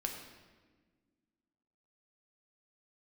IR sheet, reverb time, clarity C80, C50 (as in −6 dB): 1.4 s, 6.5 dB, 5.0 dB